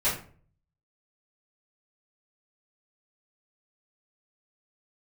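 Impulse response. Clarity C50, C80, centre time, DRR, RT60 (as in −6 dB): 6.0 dB, 11.0 dB, 33 ms, −12.0 dB, 0.45 s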